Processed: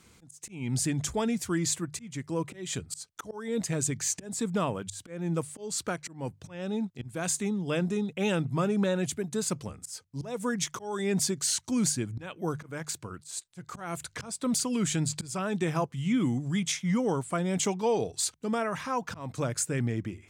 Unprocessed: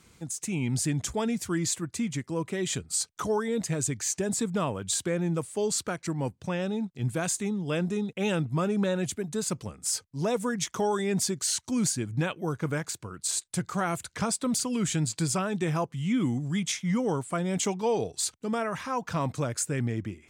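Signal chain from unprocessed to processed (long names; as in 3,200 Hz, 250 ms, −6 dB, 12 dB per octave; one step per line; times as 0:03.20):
volume swells 275 ms
mains-hum notches 50/100/150 Hz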